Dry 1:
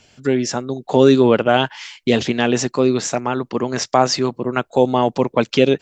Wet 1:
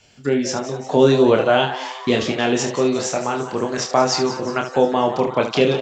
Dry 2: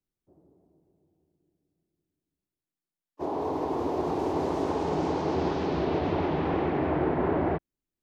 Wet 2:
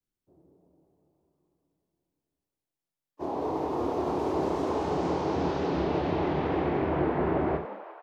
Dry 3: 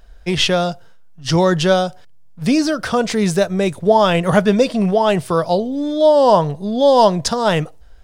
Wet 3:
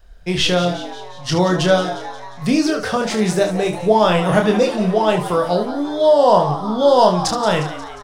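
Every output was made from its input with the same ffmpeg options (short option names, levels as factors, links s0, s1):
-filter_complex "[0:a]asplit=2[s0][s1];[s1]aecho=0:1:28|74:0.596|0.316[s2];[s0][s2]amix=inputs=2:normalize=0,adynamicequalizer=threshold=0.0251:dfrequency=250:dqfactor=4.1:tfrequency=250:tqfactor=4.1:attack=5:release=100:ratio=0.375:range=2.5:mode=cutabove:tftype=bell,asplit=2[s3][s4];[s4]asplit=6[s5][s6][s7][s8][s9][s10];[s5]adelay=178,afreqshift=130,volume=0.224[s11];[s6]adelay=356,afreqshift=260,volume=0.126[s12];[s7]adelay=534,afreqshift=390,volume=0.07[s13];[s8]adelay=712,afreqshift=520,volume=0.0394[s14];[s9]adelay=890,afreqshift=650,volume=0.0221[s15];[s10]adelay=1068,afreqshift=780,volume=0.0123[s16];[s11][s12][s13][s14][s15][s16]amix=inputs=6:normalize=0[s17];[s3][s17]amix=inputs=2:normalize=0,volume=0.75"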